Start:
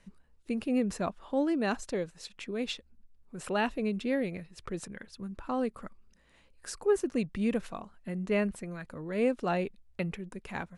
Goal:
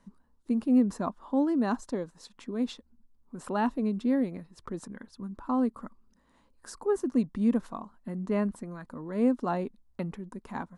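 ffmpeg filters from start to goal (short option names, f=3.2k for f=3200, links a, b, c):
-af "equalizer=f=250:t=o:w=0.67:g=11,equalizer=f=1k:t=o:w=0.67:g=10,equalizer=f=2.5k:t=o:w=0.67:g=-9,volume=-4dB"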